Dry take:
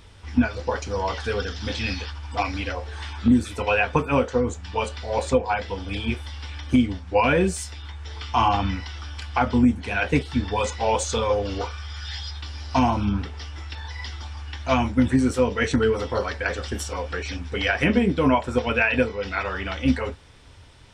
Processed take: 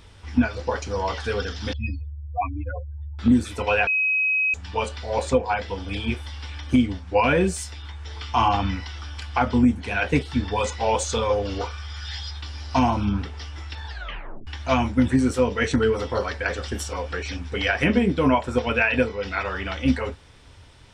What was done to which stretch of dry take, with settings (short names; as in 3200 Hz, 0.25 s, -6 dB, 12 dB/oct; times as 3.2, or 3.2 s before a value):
1.73–3.19 spectral contrast raised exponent 3.8
3.87–4.54 bleep 2540 Hz -18.5 dBFS
13.86 tape stop 0.61 s